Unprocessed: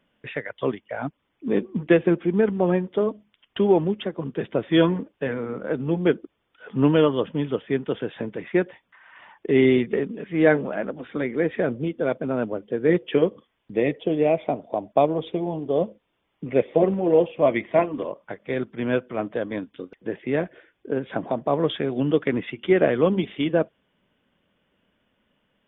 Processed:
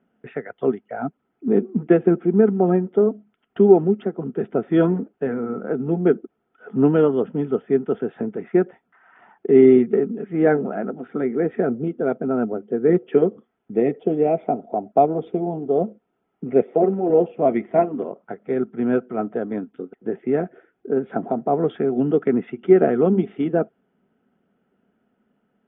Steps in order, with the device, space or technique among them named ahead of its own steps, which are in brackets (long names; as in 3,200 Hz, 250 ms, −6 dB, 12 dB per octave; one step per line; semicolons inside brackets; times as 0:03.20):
inside a cardboard box (low-pass filter 2,600 Hz 12 dB per octave; hollow resonant body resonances 230/390/700/1,300 Hz, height 18 dB, ringing for 25 ms)
0:16.64–0:17.10: high-pass filter 260 Hz 6 dB per octave
level −12 dB